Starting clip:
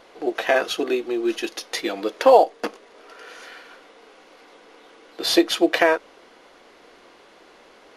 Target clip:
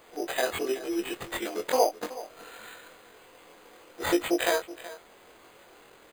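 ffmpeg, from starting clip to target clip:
-filter_complex "[0:a]afftfilt=real='re':imag='-im':win_size=2048:overlap=0.75,equalizer=f=270:t=o:w=0.35:g=-4,asplit=2[s0][s1];[s1]acompressor=threshold=0.0251:ratio=16,volume=0.708[s2];[s0][s2]amix=inputs=2:normalize=0,acrusher=bits=8:mix=0:aa=0.000001,atempo=1.3,acrusher=samples=8:mix=1:aa=0.000001,asplit=2[s3][s4];[s4]aecho=0:1:375:0.15[s5];[s3][s5]amix=inputs=2:normalize=0,volume=0.596"

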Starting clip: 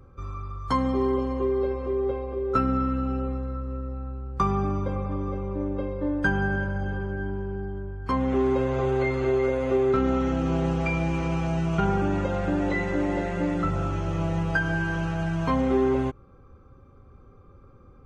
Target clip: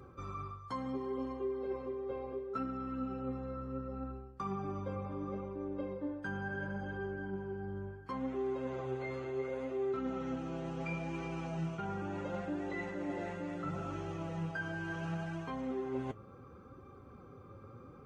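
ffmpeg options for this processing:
-af "highpass=110,areverse,acompressor=threshold=0.01:ratio=5,areverse,flanger=delay=2.5:depth=6.9:regen=53:speed=0.71:shape=sinusoidal,volume=2"

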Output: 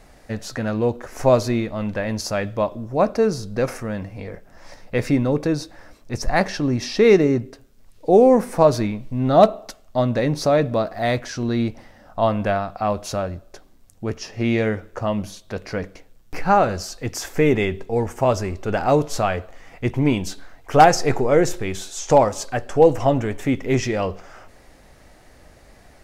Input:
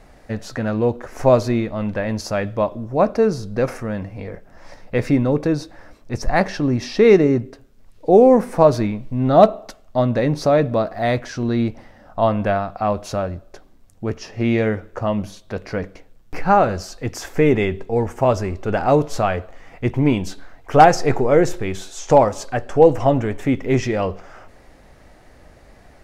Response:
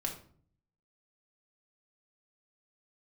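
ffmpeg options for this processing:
-af "highshelf=f=3500:g=7,volume=0.794"

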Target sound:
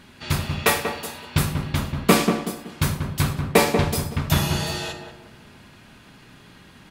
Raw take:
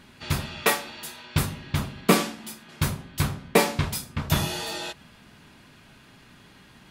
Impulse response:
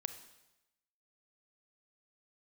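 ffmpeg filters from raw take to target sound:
-filter_complex "[0:a]asplit=2[s0][s1];[s1]adelay=188,lowpass=f=1100:p=1,volume=0.596,asplit=2[s2][s3];[s3]adelay=188,lowpass=f=1100:p=1,volume=0.38,asplit=2[s4][s5];[s5]adelay=188,lowpass=f=1100:p=1,volume=0.38,asplit=2[s6][s7];[s7]adelay=188,lowpass=f=1100:p=1,volume=0.38,asplit=2[s8][s9];[s9]adelay=188,lowpass=f=1100:p=1,volume=0.38[s10];[s0][s2][s4][s6][s8][s10]amix=inputs=6:normalize=0[s11];[1:a]atrim=start_sample=2205,afade=t=out:st=0.17:d=0.01,atrim=end_sample=7938[s12];[s11][s12]afir=irnorm=-1:irlink=0,volume=1.68"

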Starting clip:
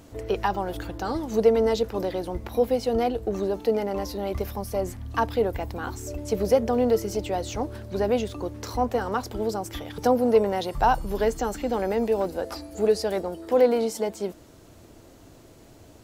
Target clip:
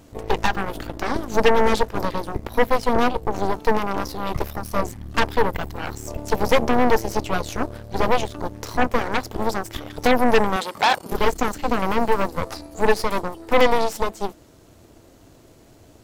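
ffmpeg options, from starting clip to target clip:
-filter_complex "[0:a]aeval=exprs='0.422*(cos(1*acos(clip(val(0)/0.422,-1,1)))-cos(1*PI/2))+0.15*(cos(8*acos(clip(val(0)/0.422,-1,1)))-cos(8*PI/2))':c=same,asettb=1/sr,asplit=3[s0][s1][s2];[s0]atrim=end=10.564[s3];[s1]atrim=start=10.56:end=11.12,asetpts=PTS-STARTPTS,afade=t=in:d=0.004:c=qsin,afade=t=out:st=0.556:d=0.004:c=qsin,highpass=290[s4];[s2]atrim=start=11.116[s5];[s3][s4]acrossfade=d=0.004:c1=hsin:c2=qsin[s6];[s6][s5]acrossfade=d=0.004:c1=qsin:c2=hsin"

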